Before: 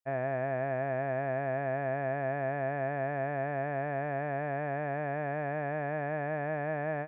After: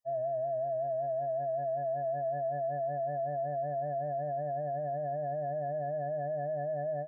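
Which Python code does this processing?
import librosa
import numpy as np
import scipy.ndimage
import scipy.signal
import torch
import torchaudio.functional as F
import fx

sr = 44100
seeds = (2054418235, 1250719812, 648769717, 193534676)

y = fx.spec_expand(x, sr, power=2.9)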